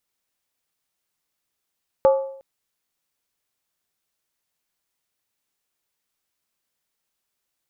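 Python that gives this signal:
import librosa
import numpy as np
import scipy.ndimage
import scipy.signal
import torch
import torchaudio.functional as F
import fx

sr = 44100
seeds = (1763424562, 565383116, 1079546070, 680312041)

y = fx.strike_skin(sr, length_s=0.36, level_db=-9.5, hz=540.0, decay_s=0.64, tilt_db=9.0, modes=5)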